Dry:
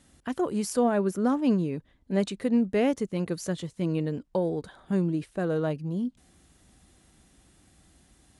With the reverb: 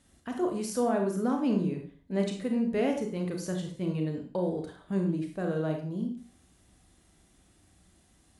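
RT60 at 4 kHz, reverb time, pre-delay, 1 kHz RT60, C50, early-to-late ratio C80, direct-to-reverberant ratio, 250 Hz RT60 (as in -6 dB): 0.40 s, 0.40 s, 29 ms, 0.40 s, 7.0 dB, 11.0 dB, 2.5 dB, 0.45 s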